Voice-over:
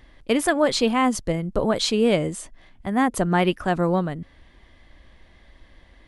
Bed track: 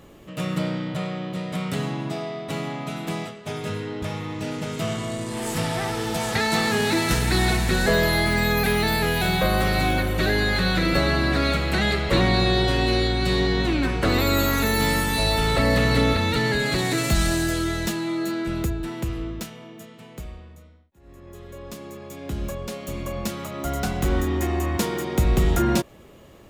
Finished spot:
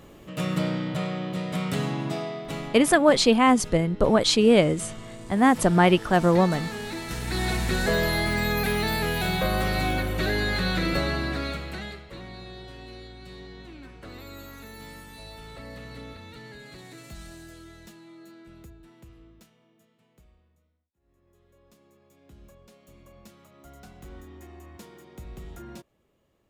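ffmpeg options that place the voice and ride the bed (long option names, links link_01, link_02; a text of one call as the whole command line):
ffmpeg -i stem1.wav -i stem2.wav -filter_complex "[0:a]adelay=2450,volume=2dB[link_01];[1:a]volume=8dB,afade=type=out:start_time=2.14:duration=0.87:silence=0.251189,afade=type=in:start_time=7.1:duration=0.53:silence=0.375837,afade=type=out:start_time=10.85:duration=1.22:silence=0.125893[link_02];[link_01][link_02]amix=inputs=2:normalize=0" out.wav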